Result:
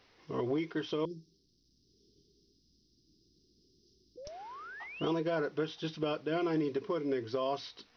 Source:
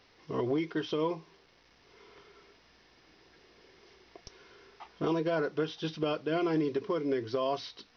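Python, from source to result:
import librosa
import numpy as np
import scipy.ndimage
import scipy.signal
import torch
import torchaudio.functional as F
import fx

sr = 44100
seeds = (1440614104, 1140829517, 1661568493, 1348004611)

y = fx.cheby2_bandstop(x, sr, low_hz=740.0, high_hz=2000.0, order=4, stop_db=60, at=(1.05, 4.25))
y = fx.spec_paint(y, sr, seeds[0], shape='rise', start_s=4.17, length_s=0.94, low_hz=480.0, high_hz=3500.0, level_db=-44.0)
y = y * 10.0 ** (-2.5 / 20.0)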